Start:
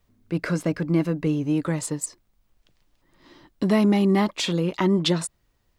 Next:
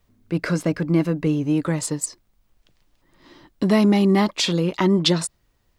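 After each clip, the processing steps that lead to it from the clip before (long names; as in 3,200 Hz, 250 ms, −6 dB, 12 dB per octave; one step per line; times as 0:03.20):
dynamic equaliser 4,900 Hz, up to +5 dB, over −44 dBFS, Q 1.8
level +2.5 dB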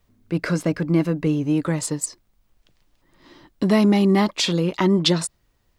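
no processing that can be heard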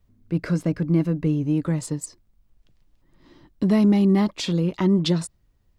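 low-shelf EQ 300 Hz +11.5 dB
level −8 dB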